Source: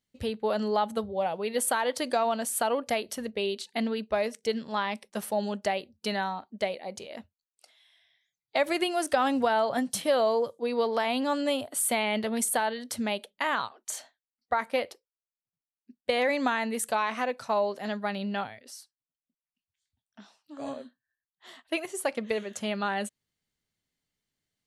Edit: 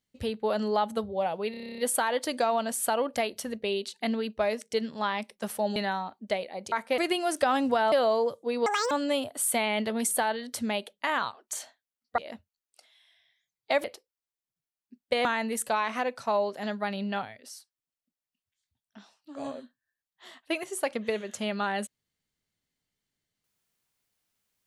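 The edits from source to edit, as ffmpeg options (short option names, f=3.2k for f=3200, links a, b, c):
-filter_complex "[0:a]asplit=19[a][b][c][d][e][f][g][h][i][j][k][l][m][n][o][p][q][r][s];[a]atrim=end=1.542[t];[b]atrim=start=1.508:end=1.542[u];[c]atrim=start=1.508:end=1.542[v];[d]atrim=start=1.508:end=1.542[w];[e]atrim=start=1.508:end=1.542[x];[f]atrim=start=1.508:end=1.542[y];[g]atrim=start=1.508:end=1.542[z];[h]atrim=start=1.508:end=1.542[aa];[i]atrim=start=1.508:end=1.542[ab];[j]atrim=start=1.508:end=5.492[ac];[k]atrim=start=6.068:end=7.032[ad];[l]atrim=start=14.548:end=14.812[ae];[m]atrim=start=8.688:end=9.632[af];[n]atrim=start=10.078:end=10.824[ag];[o]atrim=start=10.82:end=11.28,asetpts=PTS-STARTPTS,asetrate=81144,aresample=44100[ah];[p]atrim=start=11.276:end=14.552[ai];[q]atrim=start=7.028:end=8.692[aj];[r]atrim=start=14.808:end=16.222[ak];[s]atrim=start=16.468[al];[t][u]acrossfade=d=0.004:c1=hsin:c2=hsin[am];[am][v]acrossfade=d=0.004:c1=hsin:c2=hsin[an];[an][w]acrossfade=d=0.004:c1=hsin:c2=hsin[ao];[ao][x]acrossfade=d=0.004:c1=hsin:c2=hsin[ap];[ap][y]acrossfade=d=0.004:c1=hsin:c2=hsin[aq];[aq][z]acrossfade=d=0.004:c1=hsin:c2=hsin[ar];[ar][aa]acrossfade=d=0.004:c1=hsin:c2=hsin[as];[as][ab]acrossfade=d=0.004:c1=hsin:c2=hsin[at];[at][ac]acrossfade=d=0.004:c1=hsin:c2=hsin[au];[au][ad]acrossfade=d=0.004:c1=hsin:c2=hsin[av];[av][ae]acrossfade=d=0.004:c1=hsin:c2=hsin[aw];[aw][af]acrossfade=d=0.004:c1=hsin:c2=hsin[ax];[ax][ag]acrossfade=d=0.004:c1=hsin:c2=hsin[ay];[ay][ah]acrossfade=d=0.004:c1=hsin:c2=hsin[az];[az][ai]acrossfade=d=0.004:c1=hsin:c2=hsin[ba];[ba][aj]acrossfade=d=0.004:c1=hsin:c2=hsin[bb];[bb][ak]acrossfade=d=0.004:c1=hsin:c2=hsin[bc];[bc][al]acrossfade=d=0.004:c1=hsin:c2=hsin"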